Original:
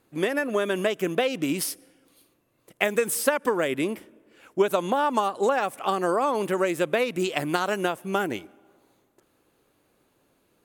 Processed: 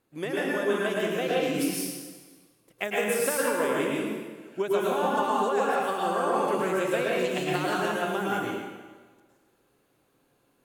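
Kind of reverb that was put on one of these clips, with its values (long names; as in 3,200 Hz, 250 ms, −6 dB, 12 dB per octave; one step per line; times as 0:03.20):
dense smooth reverb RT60 1.4 s, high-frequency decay 0.85×, pre-delay 95 ms, DRR −5.5 dB
level −8 dB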